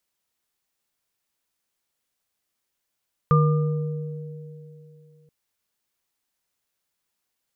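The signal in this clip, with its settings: sine partials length 1.98 s, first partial 151 Hz, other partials 475/1200 Hz, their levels -8.5/-4 dB, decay 2.90 s, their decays 3.16/0.83 s, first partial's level -14 dB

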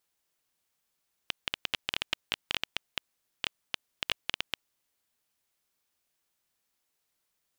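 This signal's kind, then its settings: random clicks 8.9 per s -10 dBFS 3.50 s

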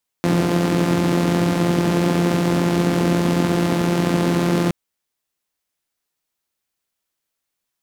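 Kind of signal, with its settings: four-cylinder engine model, steady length 4.47 s, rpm 5200, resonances 180/270 Hz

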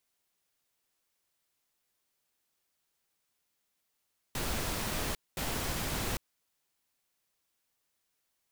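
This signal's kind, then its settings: noise bursts pink, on 0.80 s, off 0.22 s, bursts 2, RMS -34 dBFS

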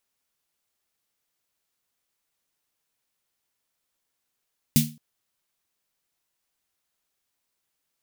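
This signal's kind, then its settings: snare drum length 0.22 s, tones 150 Hz, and 230 Hz, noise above 2.5 kHz, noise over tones -3 dB, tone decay 0.33 s, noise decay 0.26 s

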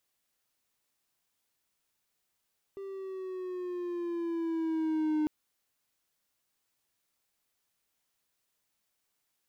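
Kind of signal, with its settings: gliding synth tone triangle, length 2.50 s, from 394 Hz, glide -4.5 st, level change +13 dB, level -23.5 dB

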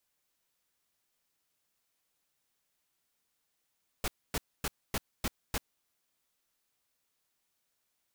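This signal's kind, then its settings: noise bursts pink, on 0.04 s, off 0.26 s, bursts 6, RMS -32 dBFS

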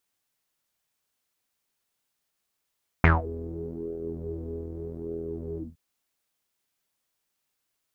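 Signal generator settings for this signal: synth patch with pulse-width modulation E2, detune 20 cents, filter lowpass, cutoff 150 Hz, Q 8.8, filter envelope 4 oct, filter decay 0.22 s, filter sustain 35%, attack 1.8 ms, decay 0.17 s, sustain -21 dB, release 0.18 s, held 2.54 s, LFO 0.82 Hz, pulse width 27%, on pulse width 19%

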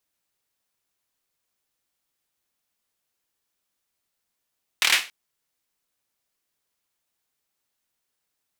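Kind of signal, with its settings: hand clap length 0.28 s, bursts 5, apart 26 ms, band 2.4 kHz, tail 0.30 s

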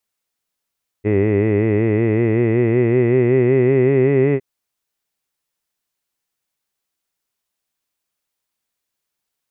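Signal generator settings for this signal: formant-synthesis vowel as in hid, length 3.36 s, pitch 101 Hz, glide +5.5 st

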